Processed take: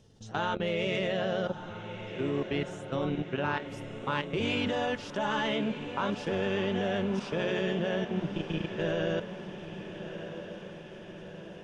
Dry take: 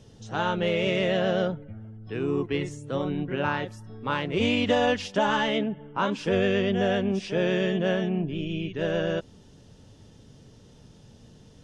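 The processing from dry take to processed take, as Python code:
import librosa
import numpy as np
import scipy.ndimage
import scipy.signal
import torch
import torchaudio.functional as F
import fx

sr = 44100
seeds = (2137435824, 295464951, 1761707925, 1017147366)

y = fx.hum_notches(x, sr, base_hz=60, count=9)
y = fx.level_steps(y, sr, step_db=15)
y = fx.echo_diffused(y, sr, ms=1275, feedback_pct=60, wet_db=-10.5)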